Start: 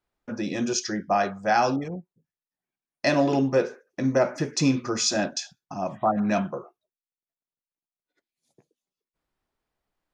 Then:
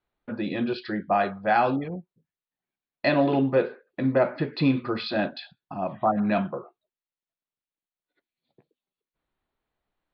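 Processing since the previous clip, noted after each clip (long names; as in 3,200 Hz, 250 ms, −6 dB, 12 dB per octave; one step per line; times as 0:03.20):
Butterworth low-pass 4,400 Hz 96 dB per octave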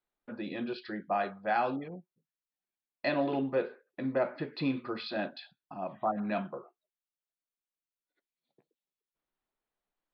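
parametric band 73 Hz −13 dB 1.5 octaves
level −7.5 dB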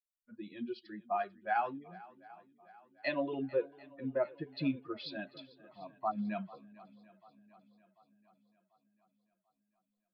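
spectral dynamics exaggerated over time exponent 2
feedback echo with a long and a short gap by turns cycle 741 ms, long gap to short 1.5 to 1, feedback 46%, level −20.5 dB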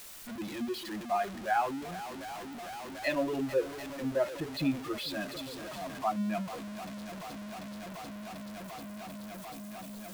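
converter with a step at zero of −39 dBFS
level +2 dB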